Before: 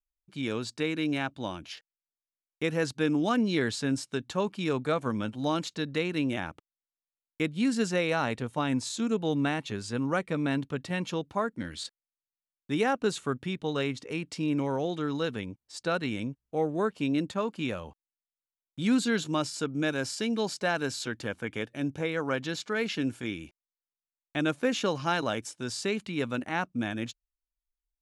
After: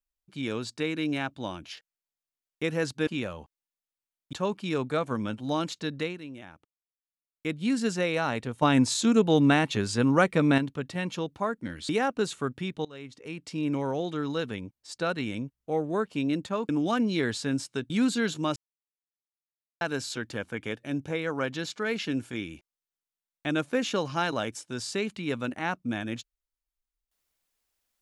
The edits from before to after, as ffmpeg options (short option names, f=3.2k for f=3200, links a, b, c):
-filter_complex "[0:a]asplit=13[a][b][c][d][e][f][g][h][i][j][k][l][m];[a]atrim=end=3.072[n];[b]atrim=start=17.538:end=18.802[o];[c]atrim=start=4.278:end=6.17,asetpts=PTS-STARTPTS,afade=t=out:st=1.652:d=0.24:silence=0.223872[p];[d]atrim=start=6.17:end=7.26,asetpts=PTS-STARTPTS,volume=-13dB[q];[e]atrim=start=7.26:end=8.572,asetpts=PTS-STARTPTS,afade=t=in:d=0.24:silence=0.223872[r];[f]atrim=start=8.568:end=10.532,asetpts=PTS-STARTPTS,volume=7dB[s];[g]atrim=start=10.528:end=11.842[t];[h]atrim=start=12.738:end=13.7,asetpts=PTS-STARTPTS,afade=t=out:st=0.958:d=0.004:c=hsin:silence=0.0794328[u];[i]atrim=start=13.7:end=17.542,asetpts=PTS-STARTPTS,afade=t=in:d=0.87:silence=0.0794328[v];[j]atrim=start=3.068:end=4.282[w];[k]atrim=start=18.798:end=19.46,asetpts=PTS-STARTPTS,afade=t=out:st=0.658:d=0.004:c=hsin[x];[l]atrim=start=19.46:end=20.71,asetpts=PTS-STARTPTS,volume=0[y];[m]atrim=start=20.71,asetpts=PTS-STARTPTS,afade=t=in:d=0.004:c=hsin[z];[n][o]acrossfade=d=0.004:c1=hsin:c2=hsin[aa];[p][q][r]concat=n=3:v=0:a=1[ab];[aa][ab]acrossfade=d=0.004:c1=hsin:c2=hsin[ac];[ac][s]acrossfade=d=0.004:c1=hsin:c2=hsin[ad];[ad][t]acrossfade=d=0.004:c1=hsin:c2=hsin[ae];[u][v]concat=n=2:v=0:a=1[af];[ae][af]acrossfade=d=0.004:c1=hsin:c2=hsin[ag];[ag][w]acrossfade=d=0.004:c1=hsin:c2=hsin[ah];[x][y][z]concat=n=3:v=0:a=1[ai];[ah][ai]acrossfade=d=0.004:c1=hsin:c2=hsin"